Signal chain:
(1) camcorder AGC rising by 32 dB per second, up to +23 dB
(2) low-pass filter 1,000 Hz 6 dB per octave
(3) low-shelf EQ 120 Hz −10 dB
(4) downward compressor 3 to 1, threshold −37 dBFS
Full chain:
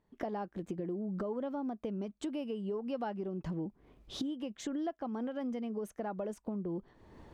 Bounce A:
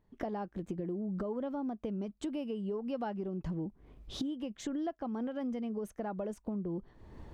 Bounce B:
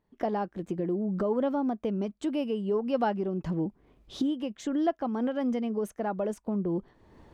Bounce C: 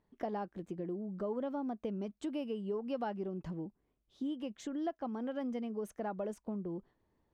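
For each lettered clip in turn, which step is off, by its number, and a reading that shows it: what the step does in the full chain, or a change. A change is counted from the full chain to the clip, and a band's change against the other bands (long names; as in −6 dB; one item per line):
3, 125 Hz band +2.0 dB
4, average gain reduction 6.5 dB
1, change in momentary loudness spread +1 LU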